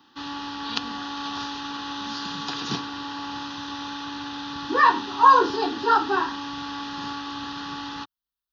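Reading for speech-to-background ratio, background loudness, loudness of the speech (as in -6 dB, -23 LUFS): 11.0 dB, -33.0 LUFS, -22.0 LUFS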